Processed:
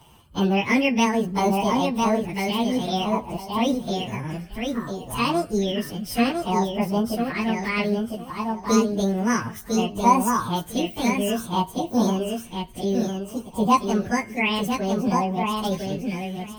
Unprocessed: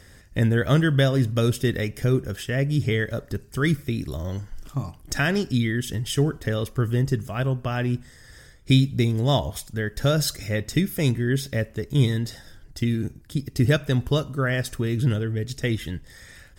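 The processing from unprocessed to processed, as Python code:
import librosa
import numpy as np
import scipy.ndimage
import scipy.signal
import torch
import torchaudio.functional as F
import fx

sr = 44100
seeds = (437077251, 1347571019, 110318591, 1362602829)

y = fx.pitch_bins(x, sr, semitones=9.0)
y = fx.echo_feedback(y, sr, ms=1003, feedback_pct=18, wet_db=-4)
y = fx.bell_lfo(y, sr, hz=0.59, low_hz=960.0, high_hz=2200.0, db=12)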